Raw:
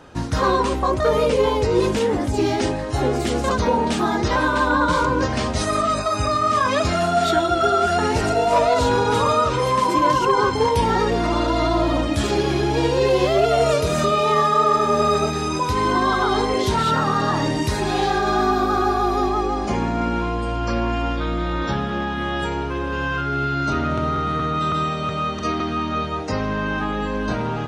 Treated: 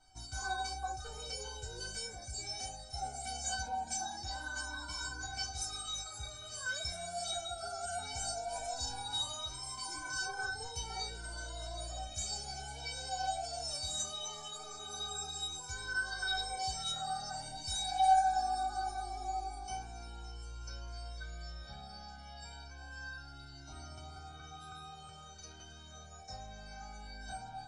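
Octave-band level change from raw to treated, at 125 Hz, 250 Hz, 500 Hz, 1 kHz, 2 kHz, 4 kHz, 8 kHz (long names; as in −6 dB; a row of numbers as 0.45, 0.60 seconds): −23.5, −34.5, −29.0, −17.5, −15.5, −10.5, −5.5 decibels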